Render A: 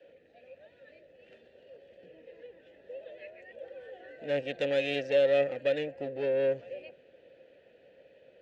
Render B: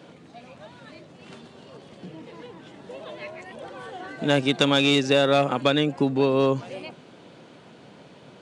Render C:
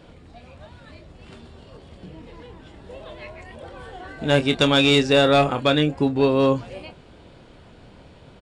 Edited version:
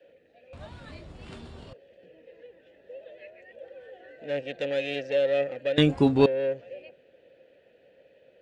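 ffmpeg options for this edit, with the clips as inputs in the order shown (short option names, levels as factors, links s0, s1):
-filter_complex "[2:a]asplit=2[s0][s1];[0:a]asplit=3[s2][s3][s4];[s2]atrim=end=0.532[s5];[s0]atrim=start=0.528:end=1.732[s6];[s3]atrim=start=1.728:end=5.782[s7];[s1]atrim=start=5.778:end=6.262[s8];[s4]atrim=start=6.258[s9];[s5][s6]acrossfade=d=0.004:c1=hsin:c2=hsin[s10];[s10][s7]acrossfade=d=0.004:c1=hsin:c2=hsin[s11];[s11][s8]acrossfade=d=0.004:c1=hsin:c2=hsin[s12];[s12][s9]acrossfade=d=0.004:c1=hsin:c2=hsin"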